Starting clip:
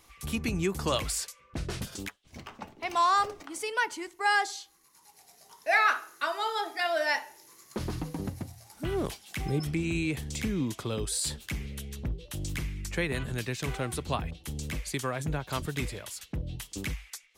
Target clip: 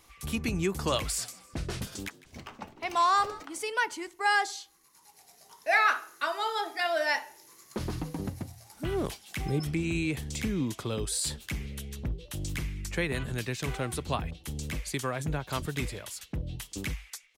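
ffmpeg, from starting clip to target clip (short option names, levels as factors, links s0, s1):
-filter_complex "[0:a]asplit=3[s0][s1][s2];[s0]afade=t=out:st=1.17:d=0.02[s3];[s1]asplit=4[s4][s5][s6][s7];[s5]adelay=154,afreqshift=65,volume=0.112[s8];[s6]adelay=308,afreqshift=130,volume=0.0437[s9];[s7]adelay=462,afreqshift=195,volume=0.017[s10];[s4][s8][s9][s10]amix=inputs=4:normalize=0,afade=t=in:st=1.17:d=0.02,afade=t=out:st=3.43:d=0.02[s11];[s2]afade=t=in:st=3.43:d=0.02[s12];[s3][s11][s12]amix=inputs=3:normalize=0"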